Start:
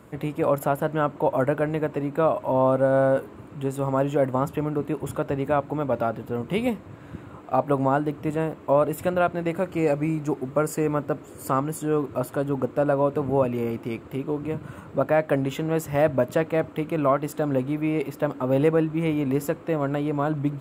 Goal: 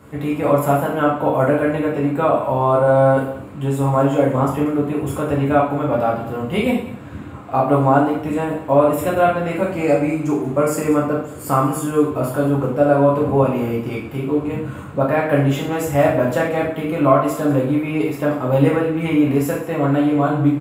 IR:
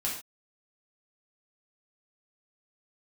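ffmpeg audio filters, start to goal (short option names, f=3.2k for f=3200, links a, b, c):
-filter_complex "[0:a]aecho=1:1:187:0.168[a];[1:a]atrim=start_sample=2205[b];[a][b]afir=irnorm=-1:irlink=0,volume=2dB"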